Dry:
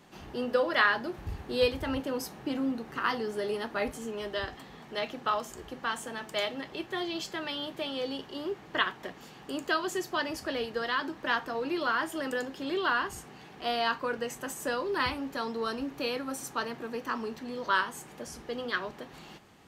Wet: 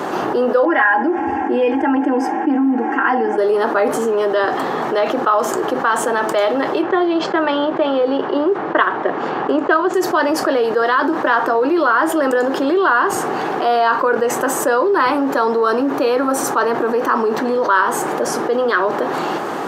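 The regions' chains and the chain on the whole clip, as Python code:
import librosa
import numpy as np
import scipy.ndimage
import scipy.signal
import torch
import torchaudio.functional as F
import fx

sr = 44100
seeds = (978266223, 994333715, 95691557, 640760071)

y = fx.chain(x, sr, fx.air_absorb(metres=130.0),
    fx.fixed_phaser(hz=810.0, stages=8),
    fx.comb(ms=3.7, depth=0.91), at=(0.65, 3.38))
y = fx.chain(y, sr, fx.transient(attack_db=6, sustain_db=-6),
    fx.mod_noise(seeds[0], snr_db=23),
    fx.lowpass(hz=3000.0, slope=12), at=(6.82, 9.94))
y = scipy.signal.sosfilt(scipy.signal.butter(4, 130.0, 'highpass', fs=sr, output='sos'), y)
y = fx.band_shelf(y, sr, hz=680.0, db=13.0, octaves=2.8)
y = fx.env_flatten(y, sr, amount_pct=70)
y = F.gain(torch.from_numpy(y), -2.5).numpy()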